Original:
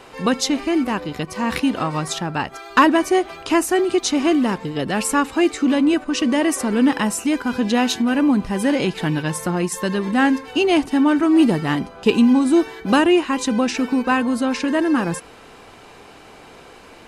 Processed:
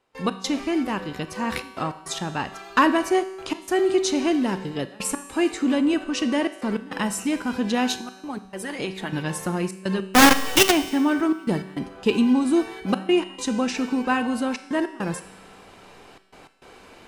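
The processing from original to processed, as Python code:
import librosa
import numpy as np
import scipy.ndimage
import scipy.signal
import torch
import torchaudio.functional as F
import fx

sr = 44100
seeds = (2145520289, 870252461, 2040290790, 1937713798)

y = fx.notch(x, sr, hz=1200.0, q=8.7, at=(4.12, 4.69))
y = fx.hpss(y, sr, part='harmonic', gain_db=-14, at=(7.95, 9.13))
y = fx.step_gate(y, sr, bpm=102, pattern='.x.xxxxxxxx', floor_db=-24.0, edge_ms=4.5)
y = fx.quant_companded(y, sr, bits=2, at=(10.07, 10.7), fade=0.02)
y = fx.comb_fb(y, sr, f0_hz=190.0, decay_s=1.4, harmonics='all', damping=0.0, mix_pct=70)
y = fx.rev_schroeder(y, sr, rt60_s=0.52, comb_ms=28, drr_db=15.0)
y = y * 10.0 ** (5.5 / 20.0)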